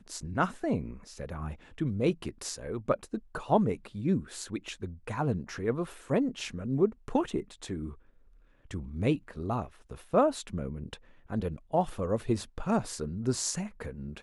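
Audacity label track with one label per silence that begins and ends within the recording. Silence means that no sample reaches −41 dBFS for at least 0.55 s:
7.930000	8.710000	silence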